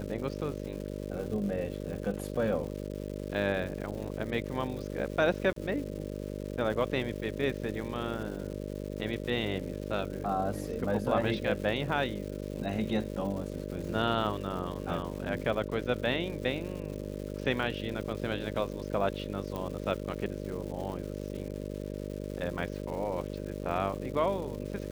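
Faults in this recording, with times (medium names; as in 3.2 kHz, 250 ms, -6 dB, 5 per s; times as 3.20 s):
buzz 50 Hz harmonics 12 -38 dBFS
crackle 340 per s -40 dBFS
5.53–5.56 s: dropout 33 ms
19.56 s: pop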